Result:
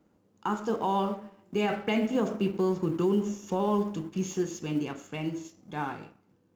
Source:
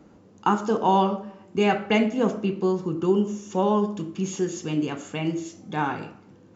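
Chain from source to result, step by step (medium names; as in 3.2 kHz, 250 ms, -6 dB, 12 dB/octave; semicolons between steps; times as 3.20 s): companding laws mixed up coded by A; Doppler pass-by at 2.94 s, 6 m/s, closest 8.8 m; peak limiter -18 dBFS, peak gain reduction 7.5 dB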